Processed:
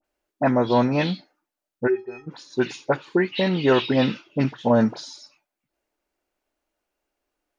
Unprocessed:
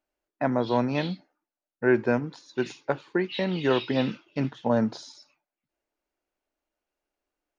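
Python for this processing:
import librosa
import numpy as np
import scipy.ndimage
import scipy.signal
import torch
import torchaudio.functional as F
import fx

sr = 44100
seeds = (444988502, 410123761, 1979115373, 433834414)

y = fx.stiff_resonator(x, sr, f0_hz=380.0, decay_s=0.25, stiffness=0.03, at=(1.86, 2.26), fade=0.02)
y = fx.dispersion(y, sr, late='highs', ms=45.0, hz=1900.0)
y = F.gain(torch.from_numpy(y), 5.5).numpy()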